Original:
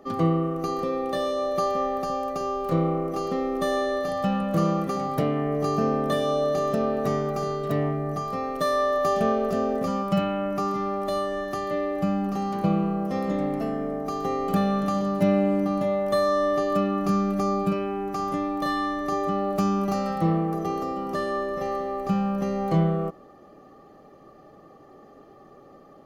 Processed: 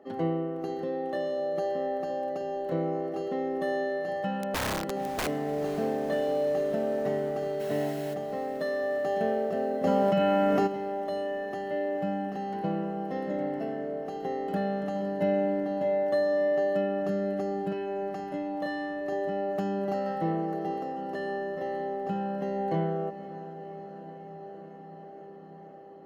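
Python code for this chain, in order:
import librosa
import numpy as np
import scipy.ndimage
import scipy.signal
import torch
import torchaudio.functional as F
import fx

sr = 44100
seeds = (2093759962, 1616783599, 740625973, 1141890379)

y = fx.quant_dither(x, sr, seeds[0], bits=6, dither='triangular', at=(7.59, 8.13), fade=0.02)
y = fx.bass_treble(y, sr, bass_db=-6, treble_db=-12)
y = fx.notch_comb(y, sr, f0_hz=1200.0)
y = fx.overflow_wrap(y, sr, gain_db=22.0, at=(4.42, 5.27))
y = fx.echo_diffused(y, sr, ms=538, feedback_pct=77, wet_db=-15.0)
y = fx.env_flatten(y, sr, amount_pct=100, at=(9.83, 10.66), fade=0.02)
y = y * librosa.db_to_amplitude(-3.0)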